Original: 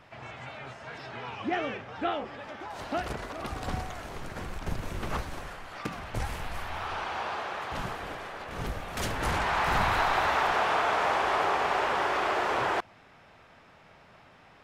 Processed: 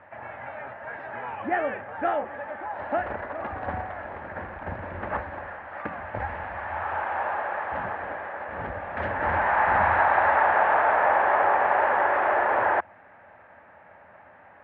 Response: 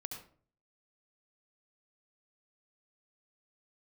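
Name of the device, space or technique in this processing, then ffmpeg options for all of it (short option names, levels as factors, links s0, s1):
bass cabinet: -af "highpass=84,equalizer=f=84:t=q:w=4:g=6,equalizer=f=140:t=q:w=4:g=-10,equalizer=f=410:t=q:w=4:g=-3,equalizer=f=580:t=q:w=4:g=9,equalizer=f=860:t=q:w=4:g=8,equalizer=f=1700:t=q:w=4:g=9,lowpass=f=2200:w=0.5412,lowpass=f=2200:w=1.3066"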